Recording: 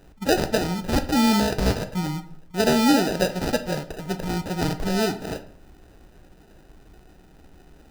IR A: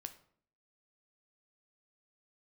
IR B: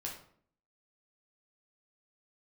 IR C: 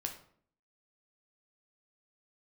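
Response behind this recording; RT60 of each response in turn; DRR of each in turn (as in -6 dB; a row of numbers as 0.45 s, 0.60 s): A; 0.55 s, 0.60 s, 0.60 s; 8.0 dB, -2.5 dB, 3.0 dB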